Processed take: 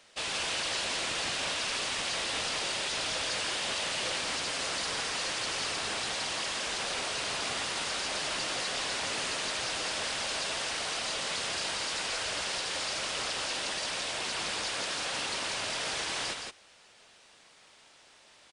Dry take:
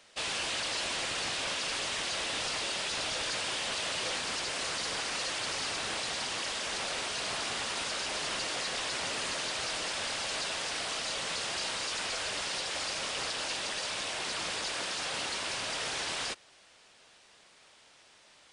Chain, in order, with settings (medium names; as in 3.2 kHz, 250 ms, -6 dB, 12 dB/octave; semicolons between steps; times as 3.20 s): delay 167 ms -5 dB